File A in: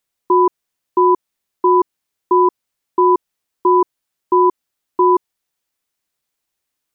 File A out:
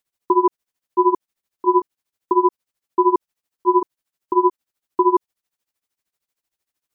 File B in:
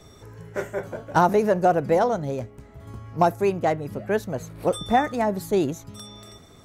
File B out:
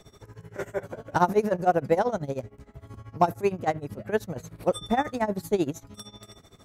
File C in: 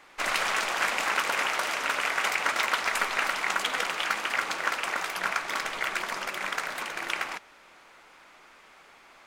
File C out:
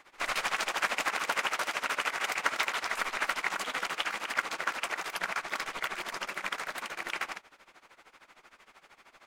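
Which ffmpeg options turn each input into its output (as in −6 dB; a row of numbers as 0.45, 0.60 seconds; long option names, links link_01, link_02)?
-af "tremolo=f=13:d=0.87"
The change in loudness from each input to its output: −3.5, −3.5, −4.5 LU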